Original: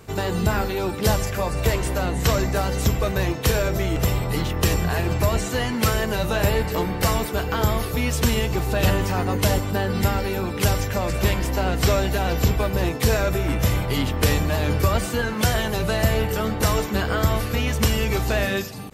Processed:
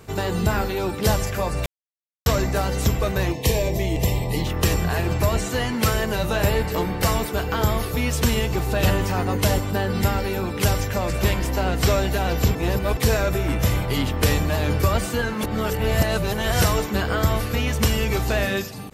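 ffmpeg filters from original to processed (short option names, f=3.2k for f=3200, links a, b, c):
-filter_complex "[0:a]asettb=1/sr,asplit=3[a][b][c];[a]atrim=end=3.324[d];[b]atrim=start=3.32:end=4.47,asetpts=PTS-STARTPTS,afade=t=in:d=0.004:c=qsin,afade=t=out:st=1.146:d=0.004:c=qsin,asuperstop=centerf=1400:order=4:qfactor=1.8[e];[c]atrim=start=4.466[f];[d][e]acrossfade=d=0.004:c1=hsin:c2=qsin[g];[g][f]acrossfade=d=0.004:c1=qsin:c2=hsin,asplit=7[h][i][j][k][l][m][n];[h]atrim=end=1.66,asetpts=PTS-STARTPTS,afade=t=out:st=1.656:d=0.004:c=hsin[o];[i]atrim=start=1.66:end=2.26,asetpts=PTS-STARTPTS,volume=0[p];[j]atrim=start=2.26:end=12.552,asetpts=PTS-STARTPTS,afade=t=in:d=0.004:c=hsin[q];[k]atrim=start=12.548:end=12.972,asetpts=PTS-STARTPTS,areverse[r];[l]atrim=start=12.968:end=15.432[s];[m]atrim=start=15.428:end=16.632,asetpts=PTS-STARTPTS,areverse[t];[n]atrim=start=16.628[u];[o][p][q]concat=n=3:v=0:a=1[v];[v][r]acrossfade=d=0.004:c1=hsin:c2=hsin[w];[w][s]acrossfade=d=0.004:c1=hsin:c2=hsin[x];[x][t]acrossfade=d=0.004:c1=hsin:c2=hsin[y];[y][u]acrossfade=d=0.004:c1=hsin:c2=hsin"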